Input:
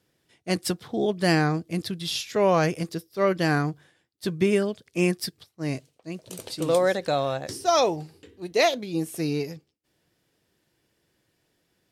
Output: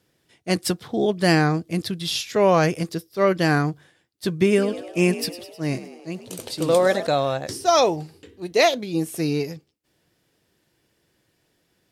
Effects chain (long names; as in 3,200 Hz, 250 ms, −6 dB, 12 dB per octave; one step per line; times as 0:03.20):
0:04.47–0:07.07: echo with shifted repeats 103 ms, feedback 60%, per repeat +56 Hz, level −14 dB
level +3.5 dB